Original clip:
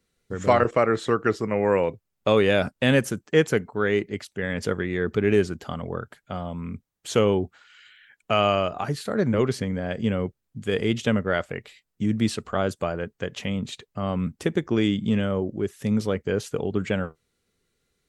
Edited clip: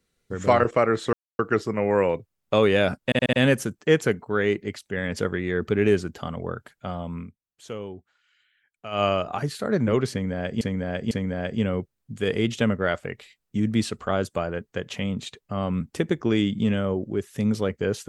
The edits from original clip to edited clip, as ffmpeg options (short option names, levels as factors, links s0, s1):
-filter_complex "[0:a]asplit=10[s0][s1][s2][s3][s4][s5][s6][s7][s8][s9];[s0]atrim=end=1.13,asetpts=PTS-STARTPTS,afade=t=out:st=1.126:d=0.004:c=hsin,apad=pad_dur=0.26[s10];[s1]atrim=start=1.13:end=2.862,asetpts=PTS-STARTPTS,afade=t=in:d=0.004:c=hsin[s11];[s2]atrim=start=2.788:end=2.862[s12];[s3]atrim=start=2.788:end=2.862[s13];[s4]atrim=start=2.788:end=2.862[s14];[s5]atrim=start=2.788:end=6.77,asetpts=PTS-STARTPTS,afade=t=out:st=3.852:d=0.13:silence=0.188365[s15];[s6]atrim=start=6.77:end=8.37,asetpts=PTS-STARTPTS,volume=0.188[s16];[s7]atrim=start=8.37:end=10.072,asetpts=PTS-STARTPTS,afade=t=in:d=0.13:silence=0.188365[s17];[s8]atrim=start=9.568:end=10.072[s18];[s9]atrim=start=9.568[s19];[s10][s11]concat=n=2:v=0:a=1[s20];[s20][s12]acrossfade=d=0.004:c1=hsin:c2=hsin[s21];[s21][s13]acrossfade=d=0.004:c1=hsin:c2=hsin[s22];[s22][s14]acrossfade=d=0.004:c1=hsin:c2=hsin[s23];[s15][s16][s17]concat=n=3:v=0:a=1[s24];[s23][s24]acrossfade=d=0.004:c1=hsin:c2=hsin[s25];[s25][s18]acrossfade=d=0.004:c1=hsin:c2=hsin[s26];[s26][s19]acrossfade=d=0.004:c1=hsin:c2=hsin"